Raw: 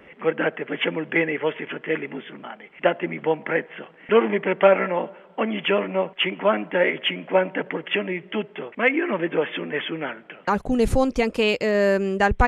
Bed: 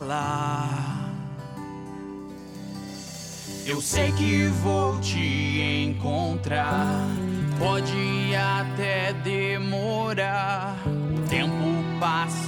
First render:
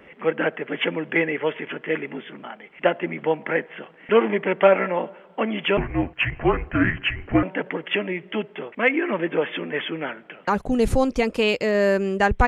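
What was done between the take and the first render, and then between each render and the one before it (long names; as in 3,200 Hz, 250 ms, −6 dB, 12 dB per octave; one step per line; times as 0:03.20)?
0:05.77–0:07.43: frequency shifter −250 Hz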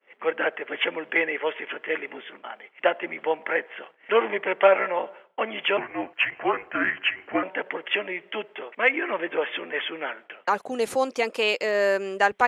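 high-pass filter 500 Hz 12 dB per octave
downward expander −42 dBFS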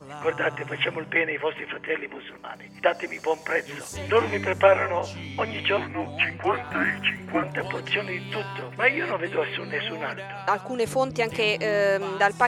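mix in bed −12 dB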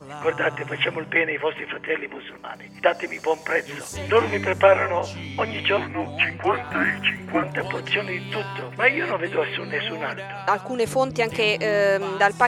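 level +2.5 dB
brickwall limiter −3 dBFS, peak gain reduction 1 dB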